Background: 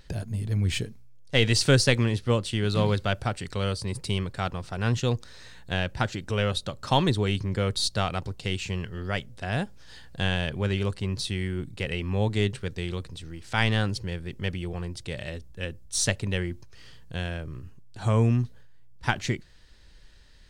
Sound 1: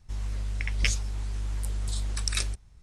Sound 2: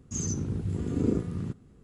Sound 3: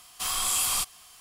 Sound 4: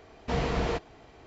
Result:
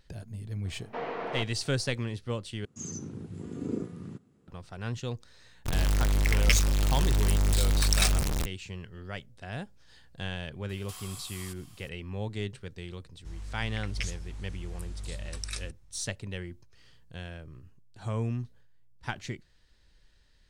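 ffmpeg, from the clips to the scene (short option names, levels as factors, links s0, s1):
-filter_complex "[1:a]asplit=2[s0][s1];[0:a]volume=0.335[s2];[4:a]highpass=390,lowpass=2100[s3];[2:a]highpass=140[s4];[s0]aeval=exprs='val(0)+0.5*0.0841*sgn(val(0))':c=same[s5];[3:a]acompressor=threshold=0.02:ratio=6:attack=3.2:release=140:knee=1:detection=peak[s6];[s2]asplit=2[s7][s8];[s7]atrim=end=2.654[s9];[s4]atrim=end=1.83,asetpts=PTS-STARTPTS,volume=0.501[s10];[s8]atrim=start=4.476[s11];[s3]atrim=end=1.26,asetpts=PTS-STARTPTS,volume=0.75,afade=t=in:d=0.004:c=hsin,afade=t=out:st=1.256:d=0.004:c=hsin,adelay=650[s12];[s5]atrim=end=2.82,asetpts=PTS-STARTPTS,volume=0.944,afade=t=in:d=0.02,afade=t=out:st=2.8:d=0.02,adelay=249165S[s13];[s6]atrim=end=1.2,asetpts=PTS-STARTPTS,volume=0.422,afade=t=in:d=0.004:c=hsin,afade=t=out:st=1.196:d=0.004:c=hsin,adelay=10690[s14];[s1]atrim=end=2.82,asetpts=PTS-STARTPTS,volume=0.376,afade=t=in:d=0.004:c=hsin,afade=t=out:st=2.816:d=0.004:c=hsin,adelay=580356S[s15];[s9][s10]acrossfade=d=0.004:c1=hsin:c2=hsin[s16];[s16][s11]acrossfade=d=0.004:c1=hsin:c2=hsin[s17];[s17][s12][s13][s14][s15]amix=inputs=5:normalize=0"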